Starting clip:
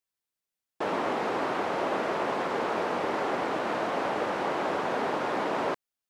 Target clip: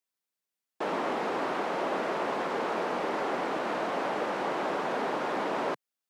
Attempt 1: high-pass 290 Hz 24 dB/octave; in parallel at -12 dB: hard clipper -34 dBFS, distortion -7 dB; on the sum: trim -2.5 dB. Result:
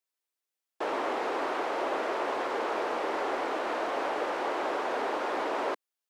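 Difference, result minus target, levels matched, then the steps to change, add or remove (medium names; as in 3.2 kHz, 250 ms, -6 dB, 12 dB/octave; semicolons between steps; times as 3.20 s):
125 Hz band -13.5 dB
change: high-pass 140 Hz 24 dB/octave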